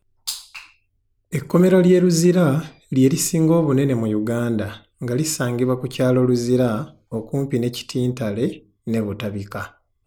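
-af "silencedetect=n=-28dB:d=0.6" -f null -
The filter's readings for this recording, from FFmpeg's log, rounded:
silence_start: 0.59
silence_end: 1.33 | silence_duration: 0.74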